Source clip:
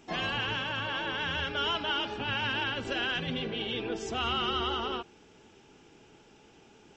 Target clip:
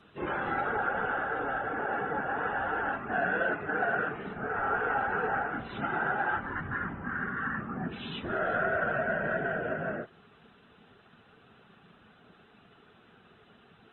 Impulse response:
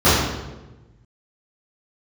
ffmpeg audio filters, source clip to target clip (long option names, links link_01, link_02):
-af "highpass=frequency=610:poles=1,afftfilt=real='hypot(re,im)*cos(2*PI*random(0))':imag='hypot(re,im)*sin(2*PI*random(1))':win_size=512:overlap=0.75,asetrate=22050,aresample=44100,volume=8.5dB"